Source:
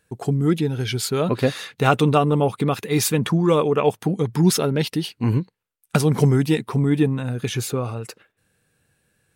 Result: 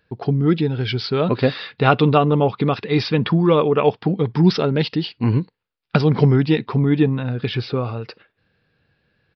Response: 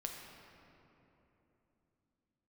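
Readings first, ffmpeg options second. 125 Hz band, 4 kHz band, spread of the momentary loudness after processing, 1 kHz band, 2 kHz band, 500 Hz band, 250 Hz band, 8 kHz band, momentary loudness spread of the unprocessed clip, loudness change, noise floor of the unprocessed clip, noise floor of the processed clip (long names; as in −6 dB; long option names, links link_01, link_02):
+2.0 dB, +1.5 dB, 8 LU, +2.0 dB, +2.5 dB, +2.5 dB, +2.0 dB, below −20 dB, 8 LU, +2.0 dB, −74 dBFS, −72 dBFS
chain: -filter_complex "[0:a]asplit=2[link_01][link_02];[1:a]atrim=start_sample=2205,afade=type=out:start_time=0.14:duration=0.01,atrim=end_sample=6615,asetrate=61740,aresample=44100[link_03];[link_02][link_03]afir=irnorm=-1:irlink=0,volume=-14.5dB[link_04];[link_01][link_04]amix=inputs=2:normalize=0,aresample=11025,aresample=44100,volume=1.5dB"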